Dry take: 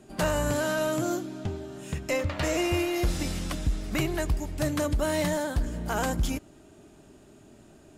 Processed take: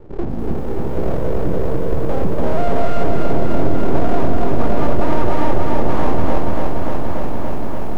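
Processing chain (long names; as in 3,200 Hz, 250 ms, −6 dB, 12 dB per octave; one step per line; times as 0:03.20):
mains-hum notches 60/120/180/240/300/360/420/480/540 Hz
downward compressor 8 to 1, threshold −28 dBFS, peak gain reduction 6.5 dB
low-pass filter sweep 190 Hz → 420 Hz, 0:00.37–0:04.02
feedback delay with all-pass diffusion 1,028 ms, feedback 55%, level −11 dB
full-wave rectification
boost into a limiter +23.5 dB
feedback echo at a low word length 290 ms, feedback 80%, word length 7 bits, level −3.5 dB
level −9 dB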